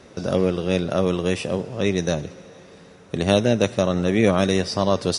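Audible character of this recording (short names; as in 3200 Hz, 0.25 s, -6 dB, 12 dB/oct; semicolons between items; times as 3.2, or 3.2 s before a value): noise floor -47 dBFS; spectral tilt -5.5 dB/oct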